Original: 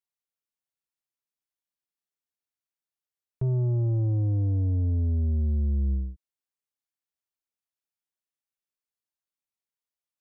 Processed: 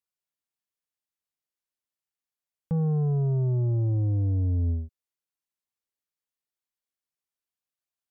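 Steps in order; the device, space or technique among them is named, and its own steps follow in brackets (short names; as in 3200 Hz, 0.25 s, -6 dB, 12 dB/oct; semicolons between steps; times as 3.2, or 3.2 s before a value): nightcore (varispeed +26%)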